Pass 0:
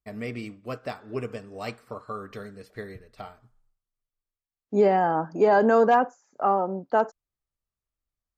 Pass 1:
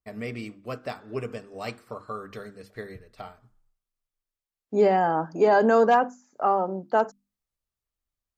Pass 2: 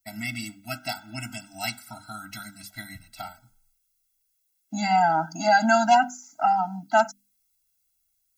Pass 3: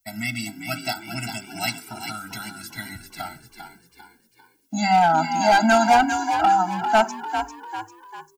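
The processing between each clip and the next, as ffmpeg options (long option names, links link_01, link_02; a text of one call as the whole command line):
ffmpeg -i in.wav -af "bandreject=frequency=50:width_type=h:width=6,bandreject=frequency=100:width_type=h:width=6,bandreject=frequency=150:width_type=h:width=6,bandreject=frequency=200:width_type=h:width=6,bandreject=frequency=250:width_type=h:width=6,bandreject=frequency=300:width_type=h:width=6,bandreject=frequency=350:width_type=h:width=6,adynamicequalizer=threshold=0.0141:dfrequency=2700:dqfactor=0.7:tfrequency=2700:tqfactor=0.7:attack=5:release=100:ratio=0.375:range=2:mode=boostabove:tftype=highshelf" out.wav
ffmpeg -i in.wav -af "crystalizer=i=9.5:c=0,afftfilt=real='re*eq(mod(floor(b*sr/1024/320),2),0)':imag='im*eq(mod(floor(b*sr/1024/320),2),0)':win_size=1024:overlap=0.75" out.wav
ffmpeg -i in.wav -filter_complex "[0:a]acrossover=split=390[link_01][link_02];[link_02]asoftclip=type=hard:threshold=-16.5dB[link_03];[link_01][link_03]amix=inputs=2:normalize=0,asplit=6[link_04][link_05][link_06][link_07][link_08][link_09];[link_05]adelay=397,afreqshift=51,volume=-8dB[link_10];[link_06]adelay=794,afreqshift=102,volume=-15.1dB[link_11];[link_07]adelay=1191,afreqshift=153,volume=-22.3dB[link_12];[link_08]adelay=1588,afreqshift=204,volume=-29.4dB[link_13];[link_09]adelay=1985,afreqshift=255,volume=-36.5dB[link_14];[link_04][link_10][link_11][link_12][link_13][link_14]amix=inputs=6:normalize=0,volume=4dB" out.wav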